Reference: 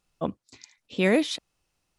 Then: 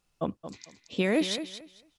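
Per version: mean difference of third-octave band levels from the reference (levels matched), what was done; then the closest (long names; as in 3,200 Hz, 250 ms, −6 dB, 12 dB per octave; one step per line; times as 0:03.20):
5.0 dB: brickwall limiter −16 dBFS, peak gain reduction 6.5 dB
on a send: repeating echo 224 ms, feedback 20%, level −11 dB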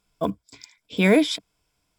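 2.5 dB: one scale factor per block 7 bits
EQ curve with evenly spaced ripples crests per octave 1.7, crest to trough 9 dB
level +3 dB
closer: second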